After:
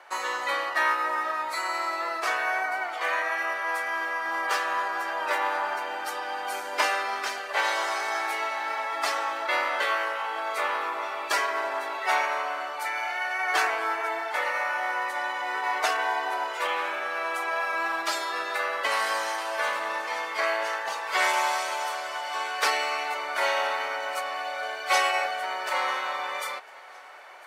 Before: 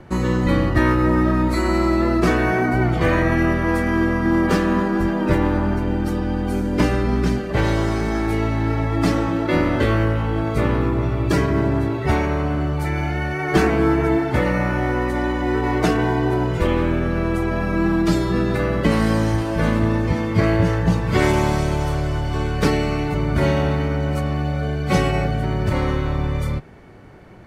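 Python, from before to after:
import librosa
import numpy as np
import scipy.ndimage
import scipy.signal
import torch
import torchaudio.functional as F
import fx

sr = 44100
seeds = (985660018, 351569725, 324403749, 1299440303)

y = scipy.signal.sosfilt(scipy.signal.butter(4, 720.0, 'highpass', fs=sr, output='sos'), x)
y = fx.rider(y, sr, range_db=5, speed_s=2.0)
y = fx.echo_feedback(y, sr, ms=1003, feedback_pct=45, wet_db=-24.0)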